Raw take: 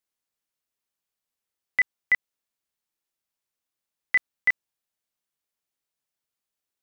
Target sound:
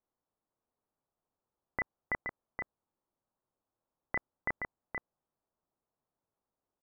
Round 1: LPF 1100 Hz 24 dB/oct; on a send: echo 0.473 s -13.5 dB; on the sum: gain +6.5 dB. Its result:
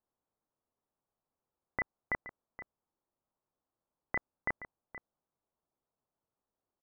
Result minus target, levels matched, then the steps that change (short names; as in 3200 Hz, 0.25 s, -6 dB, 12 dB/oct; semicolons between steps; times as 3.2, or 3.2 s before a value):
echo-to-direct -8.5 dB
change: echo 0.473 s -5 dB